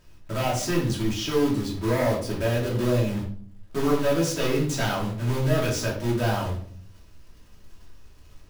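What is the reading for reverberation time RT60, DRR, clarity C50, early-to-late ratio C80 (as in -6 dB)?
0.55 s, -4.0 dB, 6.5 dB, 10.0 dB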